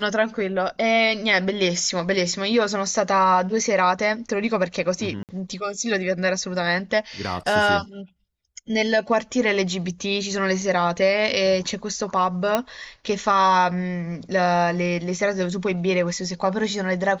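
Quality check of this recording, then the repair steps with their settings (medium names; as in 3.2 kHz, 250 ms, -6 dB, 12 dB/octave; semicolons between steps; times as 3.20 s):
5.23–5.29 s: dropout 58 ms
12.55 s: pop -6 dBFS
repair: de-click; interpolate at 5.23 s, 58 ms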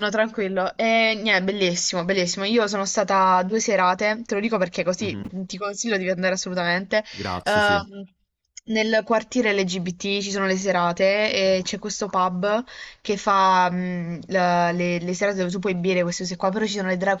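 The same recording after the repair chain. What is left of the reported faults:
nothing left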